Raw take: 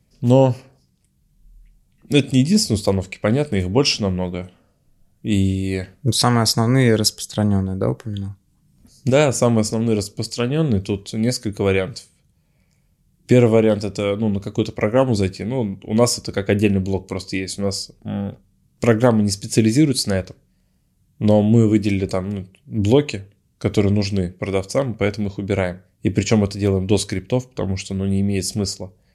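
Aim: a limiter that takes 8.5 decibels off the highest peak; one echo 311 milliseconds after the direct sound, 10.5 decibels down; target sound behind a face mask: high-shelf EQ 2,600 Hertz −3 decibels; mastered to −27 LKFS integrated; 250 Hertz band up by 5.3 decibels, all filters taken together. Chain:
parametric band 250 Hz +6.5 dB
brickwall limiter −7 dBFS
high-shelf EQ 2,600 Hz −3 dB
single-tap delay 311 ms −10.5 dB
level −8 dB

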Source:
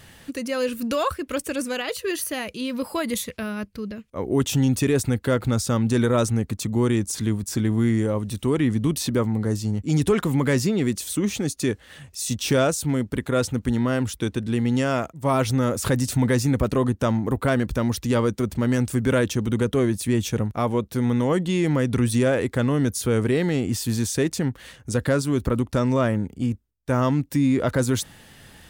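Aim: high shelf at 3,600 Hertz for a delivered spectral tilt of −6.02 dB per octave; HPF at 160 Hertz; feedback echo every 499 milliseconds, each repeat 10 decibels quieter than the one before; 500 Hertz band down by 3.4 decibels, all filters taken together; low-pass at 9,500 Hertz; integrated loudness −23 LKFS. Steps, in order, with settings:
high-pass filter 160 Hz
low-pass filter 9,500 Hz
parametric band 500 Hz −4 dB
high-shelf EQ 3,600 Hz −6.5 dB
repeating echo 499 ms, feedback 32%, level −10 dB
level +3 dB

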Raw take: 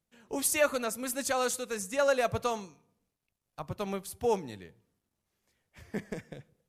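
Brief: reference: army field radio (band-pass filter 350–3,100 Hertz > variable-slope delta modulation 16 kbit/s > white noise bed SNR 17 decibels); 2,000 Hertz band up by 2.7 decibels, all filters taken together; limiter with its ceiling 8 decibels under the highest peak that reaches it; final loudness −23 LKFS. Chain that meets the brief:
parametric band 2,000 Hz +4.5 dB
brickwall limiter −20 dBFS
band-pass filter 350–3,100 Hz
variable-slope delta modulation 16 kbit/s
white noise bed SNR 17 dB
level +13 dB

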